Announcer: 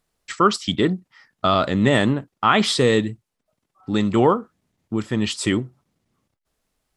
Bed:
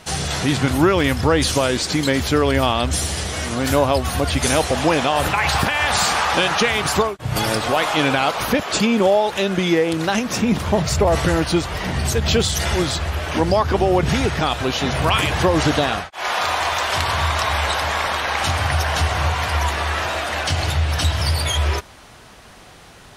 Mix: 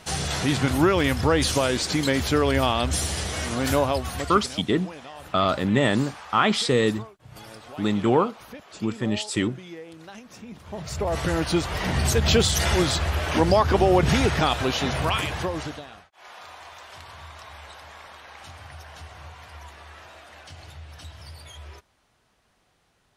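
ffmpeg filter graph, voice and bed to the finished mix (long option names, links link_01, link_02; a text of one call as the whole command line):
ffmpeg -i stem1.wav -i stem2.wav -filter_complex "[0:a]adelay=3900,volume=-3.5dB[link_01];[1:a]volume=17.5dB,afade=type=out:start_time=3.69:duration=0.85:silence=0.112202,afade=type=in:start_time=10.64:duration=1.3:silence=0.0841395,afade=type=out:start_time=14.43:duration=1.41:silence=0.0841395[link_02];[link_01][link_02]amix=inputs=2:normalize=0" out.wav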